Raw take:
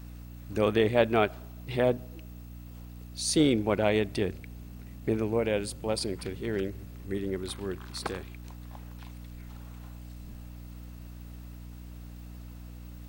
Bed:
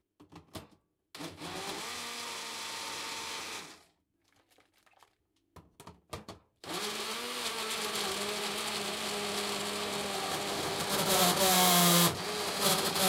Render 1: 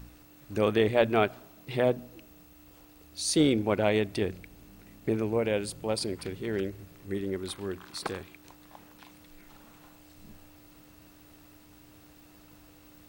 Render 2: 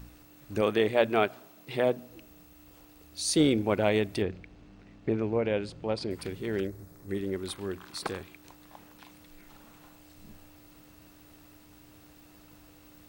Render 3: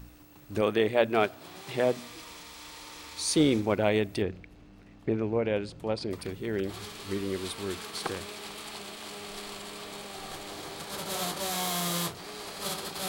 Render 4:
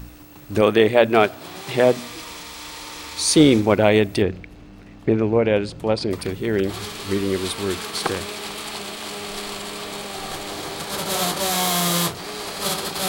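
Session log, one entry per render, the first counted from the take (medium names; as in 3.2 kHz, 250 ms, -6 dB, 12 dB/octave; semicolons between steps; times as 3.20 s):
de-hum 60 Hz, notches 4
0.61–2.10 s: high-pass 200 Hz 6 dB/octave; 4.22–6.11 s: distance through air 140 m; 6.67–7.09 s: peaking EQ 2.8 kHz -14 dB
add bed -6.5 dB
trim +10 dB; peak limiter -1 dBFS, peak gain reduction 1.5 dB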